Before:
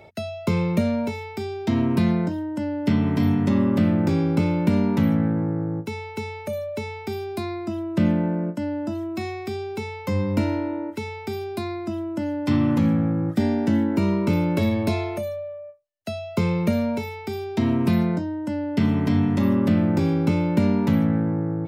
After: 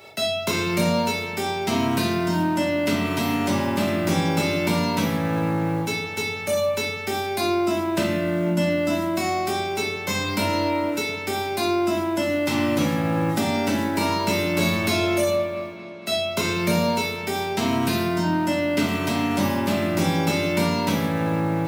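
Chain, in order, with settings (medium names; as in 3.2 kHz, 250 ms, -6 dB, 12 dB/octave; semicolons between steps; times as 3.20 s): formants flattened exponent 0.6; short-mantissa float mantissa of 4-bit; high-pass 160 Hz 6 dB/octave; on a send: feedback echo behind a low-pass 229 ms, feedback 73%, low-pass 2.9 kHz, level -18.5 dB; on the sum: compression, threshold -24 dBFS, peak gain reduction 8.5 dB; simulated room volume 69 m³, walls mixed, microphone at 1.1 m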